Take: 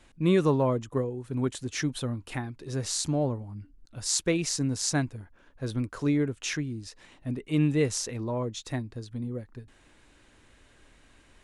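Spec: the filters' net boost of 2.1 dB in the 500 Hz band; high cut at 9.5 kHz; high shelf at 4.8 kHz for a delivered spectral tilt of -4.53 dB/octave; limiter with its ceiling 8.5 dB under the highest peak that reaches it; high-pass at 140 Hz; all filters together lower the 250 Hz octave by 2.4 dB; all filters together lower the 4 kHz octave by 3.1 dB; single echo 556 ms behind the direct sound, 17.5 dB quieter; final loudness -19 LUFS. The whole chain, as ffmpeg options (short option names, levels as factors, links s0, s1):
-af "highpass=140,lowpass=9500,equalizer=f=250:t=o:g=-4,equalizer=f=500:t=o:g=4,equalizer=f=4000:t=o:g=-9,highshelf=f=4800:g=7.5,alimiter=limit=0.112:level=0:latency=1,aecho=1:1:556:0.133,volume=4.47"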